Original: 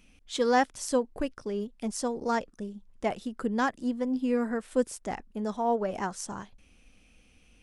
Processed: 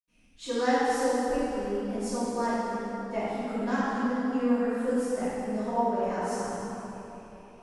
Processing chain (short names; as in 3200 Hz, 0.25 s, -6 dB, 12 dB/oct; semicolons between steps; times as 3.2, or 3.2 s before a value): bell 3400 Hz -3 dB 0.22 oct; reverb RT60 3.6 s, pre-delay 76 ms, DRR -60 dB; gain +4.5 dB